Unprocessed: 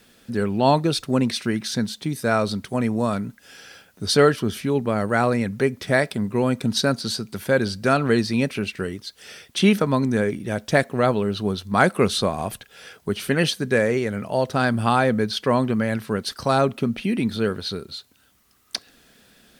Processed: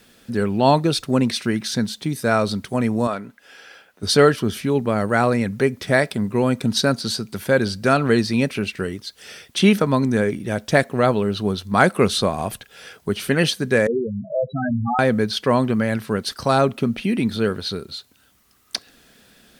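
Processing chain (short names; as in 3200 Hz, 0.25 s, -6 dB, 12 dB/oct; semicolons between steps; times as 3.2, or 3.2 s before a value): 3.07–4.03 tone controls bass -14 dB, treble -9 dB; 13.87–14.99 loudest bins only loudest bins 4; gain +2 dB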